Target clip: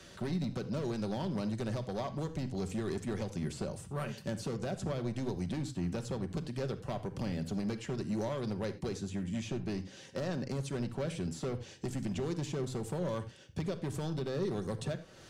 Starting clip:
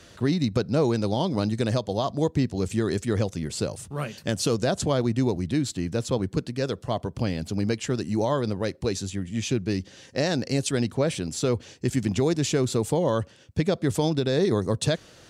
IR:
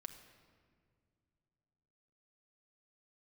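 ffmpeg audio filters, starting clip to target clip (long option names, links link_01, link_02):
-filter_complex "[0:a]acrossover=split=110|2000[link_01][link_02][link_03];[link_01]acompressor=threshold=-39dB:ratio=4[link_04];[link_02]acompressor=threshold=-30dB:ratio=4[link_05];[link_03]acompressor=threshold=-47dB:ratio=4[link_06];[link_04][link_05][link_06]amix=inputs=3:normalize=0,asoftclip=type=hard:threshold=-27dB[link_07];[1:a]atrim=start_sample=2205,afade=type=out:start_time=0.15:duration=0.01,atrim=end_sample=7056[link_08];[link_07][link_08]afir=irnorm=-1:irlink=0,volume=2dB"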